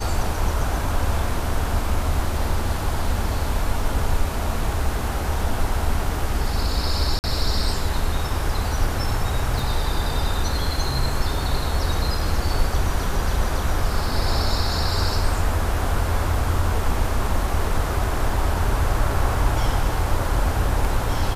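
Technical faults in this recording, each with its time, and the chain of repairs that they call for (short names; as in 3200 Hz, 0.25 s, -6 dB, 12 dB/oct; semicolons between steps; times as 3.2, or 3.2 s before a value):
7.19–7.24 gap 49 ms
9.59 gap 2.6 ms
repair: interpolate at 7.19, 49 ms; interpolate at 9.59, 2.6 ms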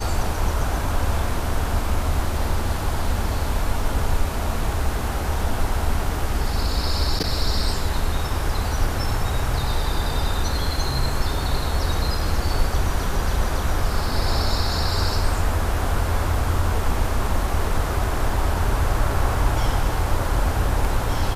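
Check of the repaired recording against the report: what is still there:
none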